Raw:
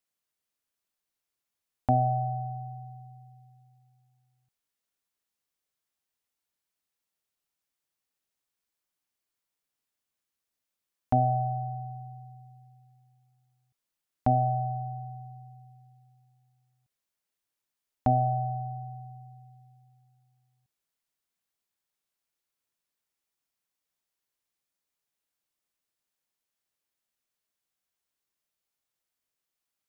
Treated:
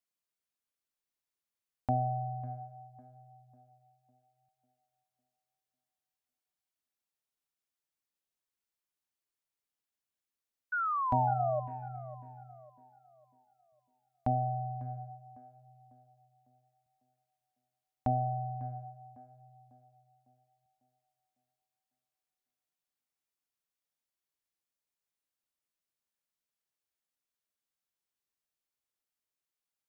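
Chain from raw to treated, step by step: painted sound fall, 10.72–11.60 s, 590–1500 Hz -25 dBFS; tape echo 550 ms, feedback 50%, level -13.5 dB, low-pass 1 kHz; trim -6.5 dB

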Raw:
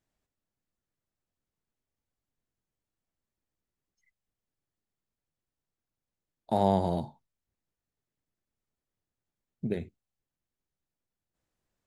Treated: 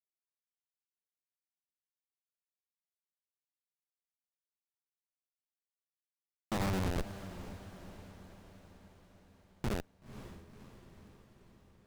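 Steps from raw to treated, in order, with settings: sorted samples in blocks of 8 samples; in parallel at 0 dB: compression 8:1, threshold -34 dBFS, peak gain reduction 15.5 dB; on the sum: touch-sensitive flanger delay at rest 8.3 ms, full sweep at -29.5 dBFS; Schmitt trigger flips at -26.5 dBFS; on a send: echo that smears into a reverb 514 ms, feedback 59%, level -12.5 dB; on the sum: loudspeaker Doppler distortion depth 0.81 ms; trim +6.5 dB

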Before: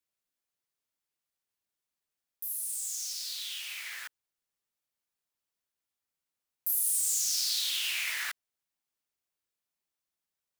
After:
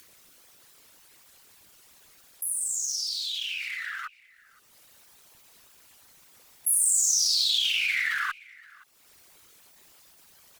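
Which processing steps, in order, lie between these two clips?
resonances exaggerated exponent 2; upward compressor, threshold -40 dBFS; formant shift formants -3 st; Chebyshev shaper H 8 -44 dB, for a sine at -17 dBFS; on a send: delay 520 ms -23.5 dB; on the sum: trim +6 dB

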